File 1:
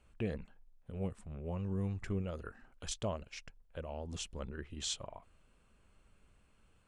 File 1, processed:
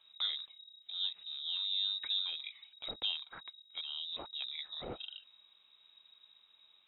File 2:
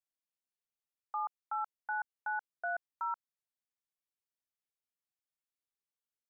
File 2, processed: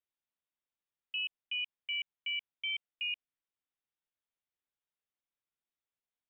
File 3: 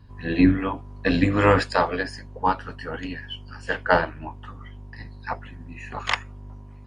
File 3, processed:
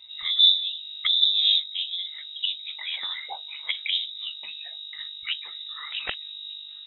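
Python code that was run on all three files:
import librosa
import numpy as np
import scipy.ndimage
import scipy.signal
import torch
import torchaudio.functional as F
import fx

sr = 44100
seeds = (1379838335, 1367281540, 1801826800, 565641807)

y = fx.env_lowpass_down(x, sr, base_hz=350.0, full_db=-21.0)
y = fx.freq_invert(y, sr, carrier_hz=3800)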